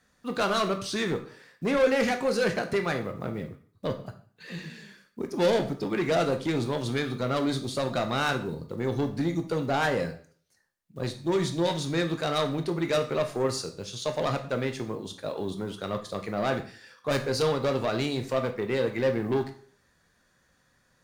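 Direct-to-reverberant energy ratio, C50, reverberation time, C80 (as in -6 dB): 6.0 dB, 11.5 dB, 0.45 s, 16.0 dB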